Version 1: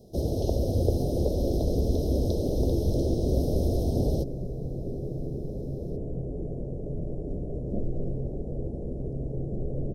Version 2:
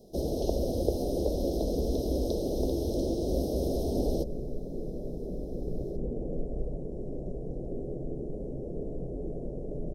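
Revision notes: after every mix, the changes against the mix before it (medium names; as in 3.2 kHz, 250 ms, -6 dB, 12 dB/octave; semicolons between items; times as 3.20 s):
second sound: entry +2.85 s; master: add peaking EQ 99 Hz -13 dB 1 oct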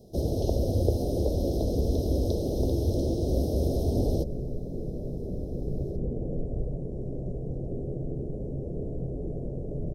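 master: add peaking EQ 99 Hz +13 dB 1 oct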